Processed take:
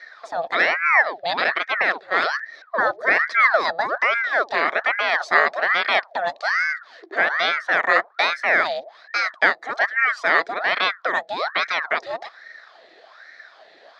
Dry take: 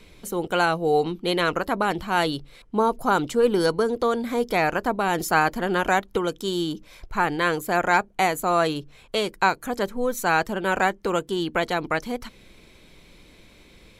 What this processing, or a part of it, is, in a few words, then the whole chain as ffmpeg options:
voice changer toy: -filter_complex "[0:a]aeval=exprs='val(0)*sin(2*PI*1100*n/s+1100*0.7/1.2*sin(2*PI*1.2*n/s))':c=same,highpass=570,equalizer=f=650:t=q:w=4:g=8,equalizer=f=950:t=q:w=4:g=-6,equalizer=f=1.8k:t=q:w=4:g=8,equalizer=f=2.8k:t=q:w=4:g=-10,equalizer=f=4k:t=q:w=4:g=4,lowpass=f=4.7k:w=0.5412,lowpass=f=4.7k:w=1.3066,asettb=1/sr,asplit=3[a][b][c];[a]atrim=end=1.444[d];[b]atrim=start=1.44:end=2.23,asetpts=PTS-STARTPTS,afade=t=in:d=0.004:c=qsin,afade=t=out:st=0.786:d=0.004:c=qsin,agate=range=-11dB:threshold=-29dB:ratio=16:detection=peak[e];[c]atrim=start=2.226[f];[d][e]acrossfade=d=0.004:c1=hsin:c2=qsin[g];[g][f]acrossfade=d=0.004:c1=qsin:c2=hsin,volume=5dB"

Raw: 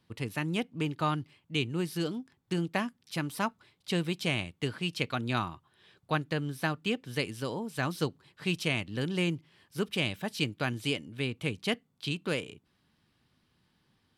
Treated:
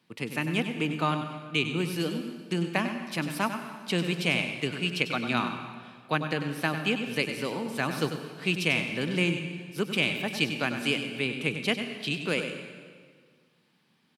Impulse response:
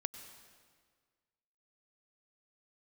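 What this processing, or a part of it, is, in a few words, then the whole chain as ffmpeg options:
PA in a hall: -filter_complex "[0:a]highpass=f=150:w=0.5412,highpass=f=150:w=1.3066,equalizer=f=2.4k:t=o:w=0.37:g=5,aecho=1:1:97:0.335[a];[1:a]atrim=start_sample=2205[b];[a][b]afir=irnorm=-1:irlink=0,volume=3.5dB"

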